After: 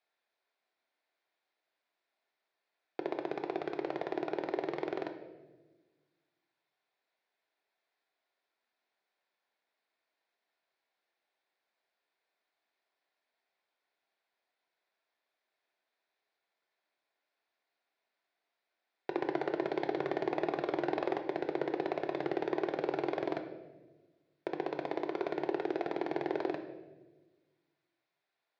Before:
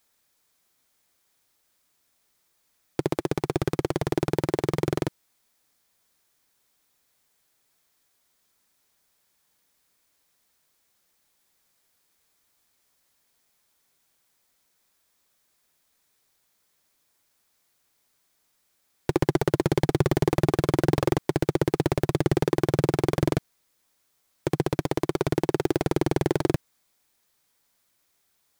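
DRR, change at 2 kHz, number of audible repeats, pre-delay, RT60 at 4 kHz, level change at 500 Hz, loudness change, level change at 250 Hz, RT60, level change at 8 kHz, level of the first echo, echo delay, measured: 5.5 dB, −7.5 dB, no echo audible, 3 ms, 0.85 s, −8.5 dB, −10.5 dB, −11.5 dB, 1.2 s, below −25 dB, no echo audible, no echo audible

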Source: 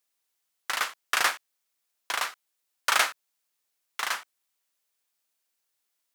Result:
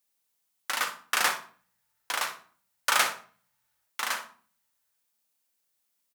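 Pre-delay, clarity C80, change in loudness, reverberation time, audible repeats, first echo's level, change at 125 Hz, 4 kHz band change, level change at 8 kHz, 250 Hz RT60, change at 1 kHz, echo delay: 3 ms, 16.0 dB, −0.5 dB, 0.45 s, 1, −13.0 dB, can't be measured, −0.5 dB, +1.0 dB, 0.65 s, −0.5 dB, 61 ms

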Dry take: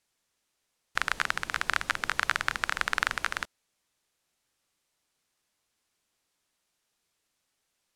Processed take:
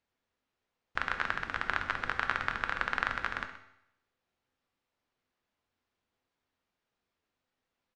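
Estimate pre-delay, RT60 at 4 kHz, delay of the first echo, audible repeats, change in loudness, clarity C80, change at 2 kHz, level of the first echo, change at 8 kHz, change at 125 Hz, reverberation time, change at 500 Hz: 4 ms, 0.75 s, 126 ms, 1, −4.0 dB, 10.5 dB, −3.5 dB, −15.5 dB, below −15 dB, +0.5 dB, 0.75 s, −0.5 dB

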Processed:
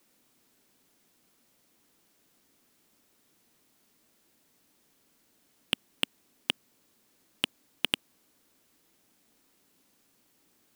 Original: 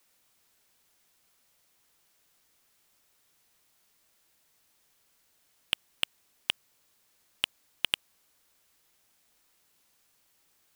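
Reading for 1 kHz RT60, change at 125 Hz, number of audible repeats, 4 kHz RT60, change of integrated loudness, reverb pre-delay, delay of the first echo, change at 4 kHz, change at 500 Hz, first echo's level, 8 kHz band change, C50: no reverb audible, +6.0 dB, no echo audible, no reverb audible, +0.5 dB, no reverb audible, no echo audible, 0.0 dB, +6.5 dB, no echo audible, 0.0 dB, no reverb audible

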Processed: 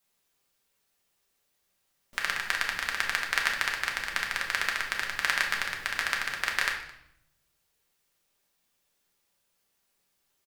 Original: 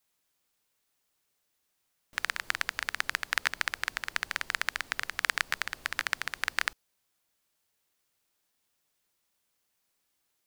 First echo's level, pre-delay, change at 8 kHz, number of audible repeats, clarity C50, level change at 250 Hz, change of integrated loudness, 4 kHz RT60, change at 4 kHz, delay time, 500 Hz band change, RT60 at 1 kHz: −21.0 dB, 5 ms, +2.0 dB, 1, 6.0 dB, +4.0 dB, +3.0 dB, 0.65 s, +3.0 dB, 216 ms, +4.0 dB, 0.75 s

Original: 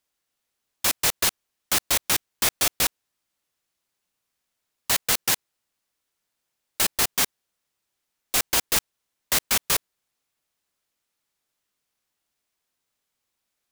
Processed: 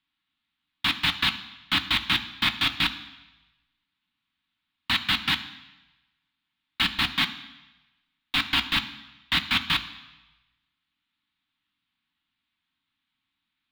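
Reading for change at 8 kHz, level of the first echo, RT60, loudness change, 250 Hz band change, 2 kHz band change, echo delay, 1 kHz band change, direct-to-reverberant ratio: −21.5 dB, no echo audible, 1.0 s, −2.0 dB, +4.0 dB, +3.5 dB, no echo audible, 0.0 dB, 7.0 dB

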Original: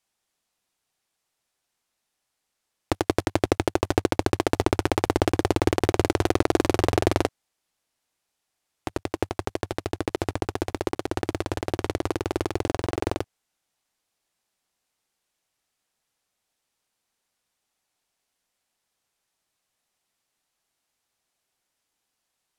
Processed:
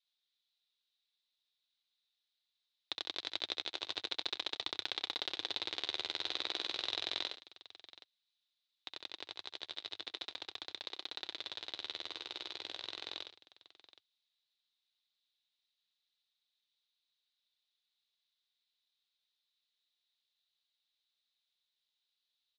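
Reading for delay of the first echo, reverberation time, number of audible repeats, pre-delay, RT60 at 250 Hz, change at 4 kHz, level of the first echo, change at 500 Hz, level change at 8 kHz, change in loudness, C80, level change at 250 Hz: 64 ms, no reverb audible, 3, no reverb audible, no reverb audible, +0.5 dB, −4.5 dB, −27.0 dB, −18.5 dB, −13.5 dB, no reverb audible, −31.0 dB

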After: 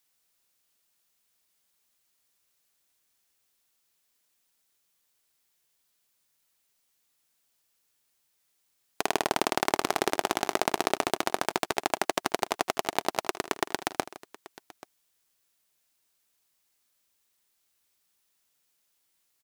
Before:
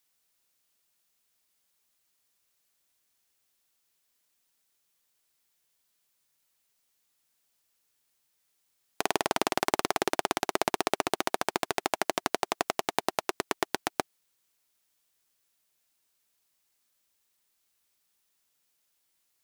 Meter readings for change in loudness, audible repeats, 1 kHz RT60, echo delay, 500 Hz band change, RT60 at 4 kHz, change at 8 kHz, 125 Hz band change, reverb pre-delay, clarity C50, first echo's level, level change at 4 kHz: +1.0 dB, 3, no reverb audible, 78 ms, +1.0 dB, no reverb audible, +1.0 dB, +1.0 dB, no reverb audible, no reverb audible, −18.0 dB, +1.0 dB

